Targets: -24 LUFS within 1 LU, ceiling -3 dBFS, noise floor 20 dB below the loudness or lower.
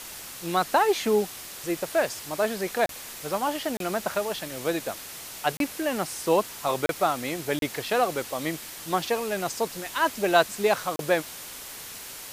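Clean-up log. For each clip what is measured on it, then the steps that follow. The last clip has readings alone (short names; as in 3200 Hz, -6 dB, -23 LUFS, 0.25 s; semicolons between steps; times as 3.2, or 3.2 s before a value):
dropouts 6; longest dropout 32 ms; noise floor -41 dBFS; noise floor target -48 dBFS; loudness -27.5 LUFS; peak -5.0 dBFS; loudness target -24.0 LUFS
-> interpolate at 2.86/3.77/5.57/6.86/7.59/10.96, 32 ms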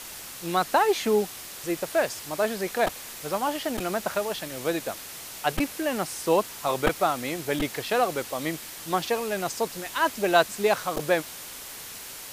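dropouts 0; noise floor -41 dBFS; noise floor target -47 dBFS
-> noise print and reduce 6 dB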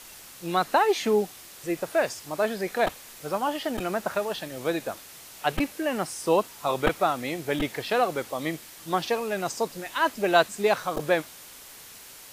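noise floor -46 dBFS; noise floor target -47 dBFS
-> noise print and reduce 6 dB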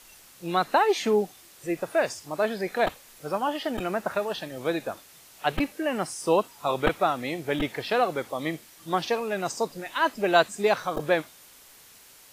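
noise floor -52 dBFS; loudness -27.0 LUFS; peak -5.0 dBFS; loudness target -24.0 LUFS
-> gain +3 dB; limiter -3 dBFS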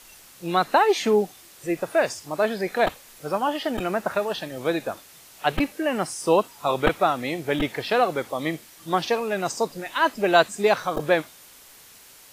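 loudness -24.0 LUFS; peak -3.0 dBFS; noise floor -49 dBFS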